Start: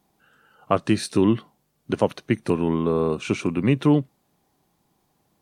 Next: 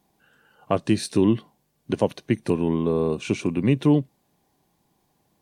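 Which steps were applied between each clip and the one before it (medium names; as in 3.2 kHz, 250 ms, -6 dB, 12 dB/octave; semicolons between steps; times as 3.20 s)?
band-stop 1.3 kHz, Q 7.8; dynamic bell 1.4 kHz, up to -5 dB, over -37 dBFS, Q 0.87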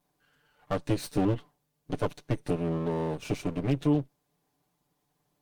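comb filter that takes the minimum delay 6.8 ms; trim -6.5 dB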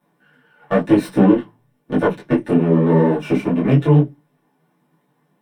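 reverberation RT60 0.15 s, pre-delay 3 ms, DRR -0.5 dB; detune thickener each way 35 cents; trim +5.5 dB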